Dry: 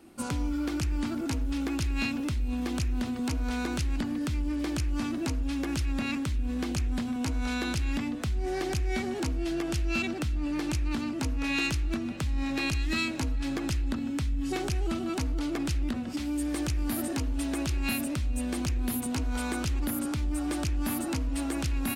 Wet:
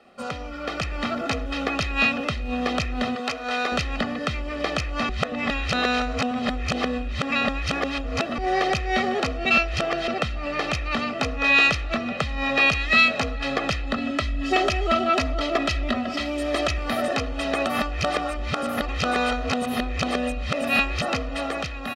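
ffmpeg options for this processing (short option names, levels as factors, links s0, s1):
-filter_complex "[0:a]asettb=1/sr,asplit=3[s0][s1][s2];[s0]atrim=end=3.154[s3];[s1]atrim=start=3.15:end=3.72,asetpts=PTS-STARTPTS,afade=t=in:d=0.004:c=qsin,afade=t=out:st=0.566:d=0.004:c=qsin,highpass=f=570:p=1[s4];[s2]atrim=start=3.716[s5];[s3][s4]acrossfade=d=0.004:c1=hsin:c2=qsin[s6];[s6][s5]acrossfade=d=0.004:c1=qsin:c2=hsin,asettb=1/sr,asplit=3[s7][s8][s9];[s7]atrim=end=13.974[s10];[s8]atrim=start=13.97:end=16.78,asetpts=PTS-STARTPTS,afade=t=in:d=0.004:c=qsin,afade=t=out:st=2.806:d=0.004:c=qsin,aecho=1:1:3.1:0.69,atrim=end_sample=123921[s11];[s9]atrim=start=16.776[s12];[s10][s11]acrossfade=d=0.004:c1=hsin:c2=qsin[s13];[s13][s12]acrossfade=d=0.004:c1=qsin:c2=hsin,asplit=7[s14][s15][s16][s17][s18][s19][s20];[s14]atrim=end=5.092[s21];[s15]atrim=start=5.088:end=8.382,asetpts=PTS-STARTPTS,areverse[s22];[s16]atrim=start=8.378:end=9.452[s23];[s17]atrim=start=9.448:end=10.082,asetpts=PTS-STARTPTS,areverse[s24];[s18]atrim=start=10.078:end=17.662[s25];[s19]atrim=start=17.658:end=21.022,asetpts=PTS-STARTPTS,areverse[s26];[s20]atrim=start=21.018[s27];[s21][s22]acrossfade=d=0.004:c1=hsin:c2=hsin[s28];[s28][s23]acrossfade=d=0.004:c1=hsin:c2=hsin[s29];[s29][s24]acrossfade=d=0.004:c1=hsin:c2=hsin[s30];[s30][s25]acrossfade=d=0.004:c1=hsin:c2=hsin[s31];[s31][s26]acrossfade=d=0.004:c1=hsin:c2=hsin[s32];[s32][s27]acrossfade=d=0.004:c1=hsin:c2=hsin,acrossover=split=220 4600:gain=0.126 1 0.0631[s33][s34][s35];[s33][s34][s35]amix=inputs=3:normalize=0,aecho=1:1:1.6:0.98,dynaudnorm=f=200:g=7:m=2.24,volume=1.58"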